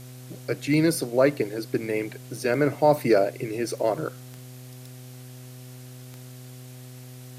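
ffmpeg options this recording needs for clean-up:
-af "adeclick=t=4,bandreject=f=126.3:t=h:w=4,bandreject=f=252.6:t=h:w=4,bandreject=f=378.9:t=h:w=4,bandreject=f=505.2:t=h:w=4,bandreject=f=631.5:t=h:w=4,bandreject=f=757.8:t=h:w=4,afwtdn=0.0032"

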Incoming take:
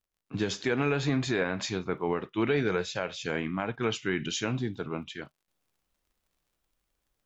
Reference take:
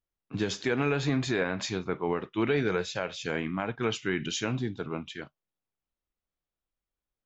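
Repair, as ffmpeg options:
-af "adeclick=t=4,asetnsamples=n=441:p=0,asendcmd='5.48 volume volume -11dB',volume=0dB"

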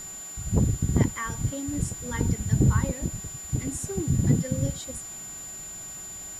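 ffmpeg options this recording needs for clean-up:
-af "bandreject=f=377.9:t=h:w=4,bandreject=f=755.8:t=h:w=4,bandreject=f=1.1337k:t=h:w=4,bandreject=f=1.5116k:t=h:w=4,bandreject=f=1.8895k:t=h:w=4,bandreject=f=7.1k:w=30,afwtdn=0.004"

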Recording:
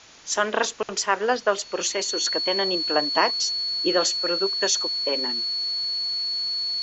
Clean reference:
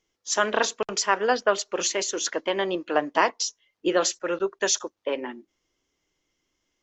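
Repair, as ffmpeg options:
-af "bandreject=f=4.4k:w=30,afftdn=nr=30:nf=-35"

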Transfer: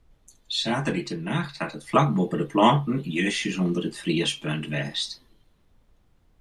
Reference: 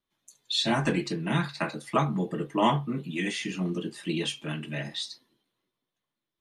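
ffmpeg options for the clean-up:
-af "agate=range=-21dB:threshold=-53dB,asetnsamples=n=441:p=0,asendcmd='1.89 volume volume -5.5dB',volume=0dB"

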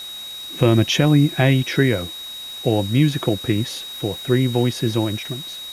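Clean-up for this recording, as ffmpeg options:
-af "adeclick=t=4,bandreject=f=3.8k:w=30,afftdn=nr=30:nf=-33"

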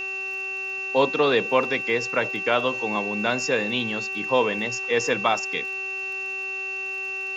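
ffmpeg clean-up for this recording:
-af "adeclick=t=4,bandreject=f=383.9:t=h:w=4,bandreject=f=767.8:t=h:w=4,bandreject=f=1.1517k:t=h:w=4,bandreject=f=1.5356k:t=h:w=4,bandreject=f=1.9195k:t=h:w=4,bandreject=f=2.3034k:t=h:w=4,bandreject=f=2.7k:w=30,afwtdn=0.004"

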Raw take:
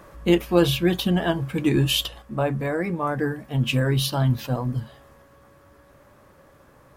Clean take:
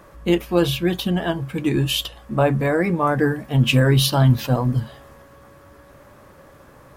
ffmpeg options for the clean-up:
-af "asetnsamples=n=441:p=0,asendcmd='2.22 volume volume 6dB',volume=0dB"

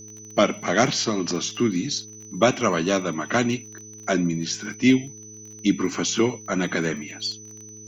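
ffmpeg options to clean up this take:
-af "adeclick=t=4,bandreject=f=107.5:t=h:w=4,bandreject=f=215:t=h:w=4,bandreject=f=322.5:t=h:w=4,bandreject=f=430:t=h:w=4,bandreject=f=6k:w=30,agate=range=-21dB:threshold=-34dB"

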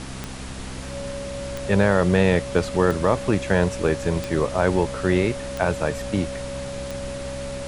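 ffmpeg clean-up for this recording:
-af "adeclick=t=4,bandreject=f=65.2:t=h:w=4,bandreject=f=130.4:t=h:w=4,bandreject=f=195.6:t=h:w=4,bandreject=f=260.8:t=h:w=4,bandreject=f=560:w=30,afftdn=nr=30:nf=-32"

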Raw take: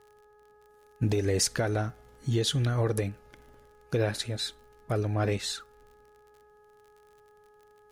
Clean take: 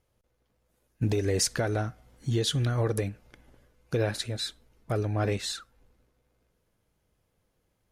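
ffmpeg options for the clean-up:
-af "adeclick=t=4,bandreject=f=419.7:t=h:w=4,bandreject=f=839.4:t=h:w=4,bandreject=f=1.2591k:t=h:w=4,bandreject=f=1.6788k:t=h:w=4"

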